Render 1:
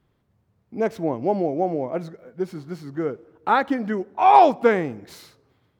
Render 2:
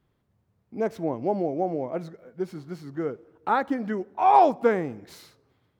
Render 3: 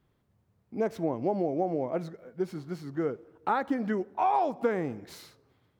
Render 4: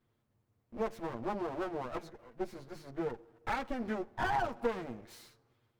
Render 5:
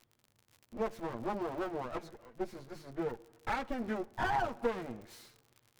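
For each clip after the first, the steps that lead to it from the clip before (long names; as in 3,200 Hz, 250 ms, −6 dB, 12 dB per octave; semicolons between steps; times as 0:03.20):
dynamic equaliser 3,000 Hz, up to −6 dB, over −36 dBFS, Q 0.89; level −3.5 dB
downward compressor 6 to 1, threshold −23 dBFS, peak gain reduction 10.5 dB
lower of the sound and its delayed copy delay 8.6 ms; level −4.5 dB
surface crackle 66 per second −46 dBFS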